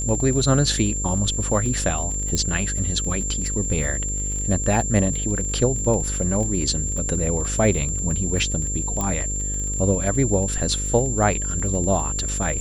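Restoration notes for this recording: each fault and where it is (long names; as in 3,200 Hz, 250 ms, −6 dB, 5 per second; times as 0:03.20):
mains buzz 50 Hz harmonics 11 −28 dBFS
surface crackle 31 per second −28 dBFS
whistle 7,300 Hz −26 dBFS
0:02.35: click −10 dBFS
0:09.01: click −12 dBFS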